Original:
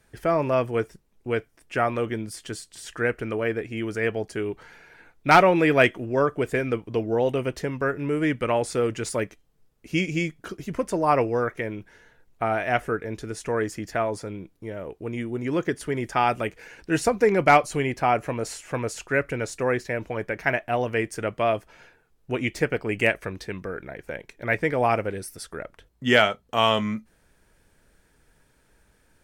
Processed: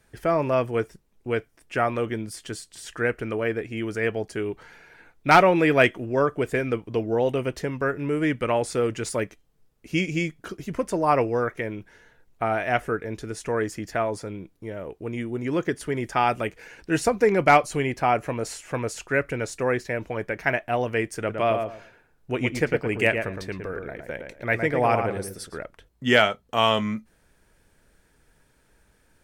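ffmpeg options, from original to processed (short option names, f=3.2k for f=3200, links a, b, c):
-filter_complex "[0:a]asettb=1/sr,asplit=3[a][b][c];[a]atrim=end=21.174[d];[b]atrim=start=21.17:end=25.64,asetpts=PTS-STARTPTS,afade=t=in:d=0.004:c=qsin,afade=t=out:st=4.466:d=0.004:c=qsin,asplit=2[e][f];[f]adelay=113,lowpass=f=1.7k:p=1,volume=-5dB,asplit=2[g][h];[h]adelay=113,lowpass=f=1.7k:p=1,volume=0.23,asplit=2[i][j];[j]adelay=113,lowpass=f=1.7k:p=1,volume=0.23[k];[e][g][i][k]amix=inputs=4:normalize=0,atrim=end_sample=197127[l];[c]atrim=start=25.636[m];[d][l]acrossfade=d=0.004:c1=hsin:c2=qsin[n];[n][m]acrossfade=d=0.004:c1=qsin:c2=hsin"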